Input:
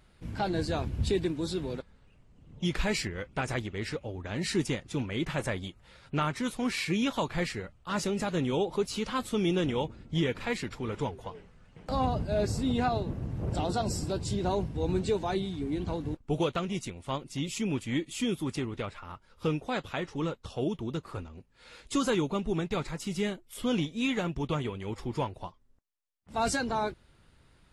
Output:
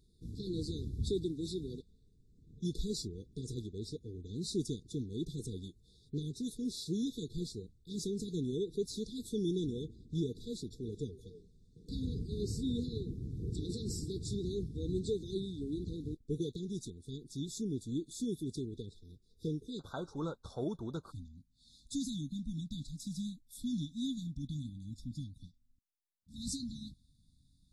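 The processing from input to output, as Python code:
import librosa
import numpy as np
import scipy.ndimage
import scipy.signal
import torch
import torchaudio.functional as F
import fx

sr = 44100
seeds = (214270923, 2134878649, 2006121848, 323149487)

y = fx.brickwall_bandstop(x, sr, low_hz=fx.steps((0.0, 480.0), (19.79, 1600.0), (21.1, 300.0)), high_hz=3400.0)
y = y * librosa.db_to_amplitude(-6.0)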